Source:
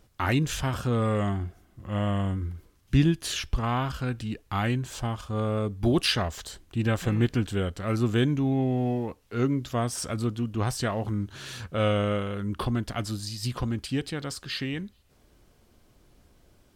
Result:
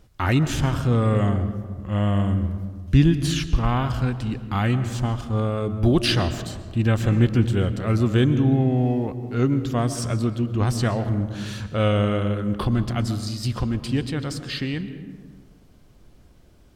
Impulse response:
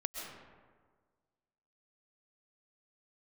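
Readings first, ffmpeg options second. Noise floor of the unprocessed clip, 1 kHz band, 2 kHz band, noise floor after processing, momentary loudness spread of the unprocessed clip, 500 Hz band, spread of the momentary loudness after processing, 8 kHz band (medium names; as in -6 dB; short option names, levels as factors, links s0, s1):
-62 dBFS, +3.0 dB, +2.5 dB, -52 dBFS, 9 LU, +4.0 dB, 9 LU, +1.0 dB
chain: -filter_complex "[0:a]asplit=2[s0][s1];[1:a]atrim=start_sample=2205,lowpass=8700,lowshelf=f=320:g=11.5[s2];[s1][s2]afir=irnorm=-1:irlink=0,volume=0.398[s3];[s0][s3]amix=inputs=2:normalize=0"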